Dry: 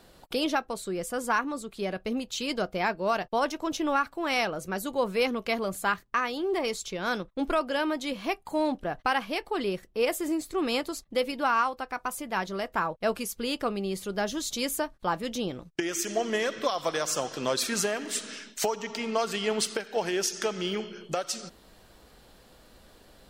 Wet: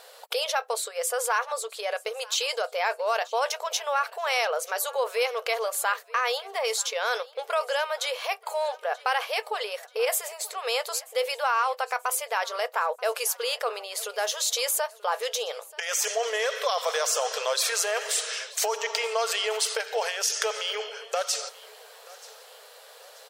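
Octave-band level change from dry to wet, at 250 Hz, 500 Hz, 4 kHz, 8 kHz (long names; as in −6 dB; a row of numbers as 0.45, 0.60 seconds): below −30 dB, +1.0 dB, +5.0 dB, +6.5 dB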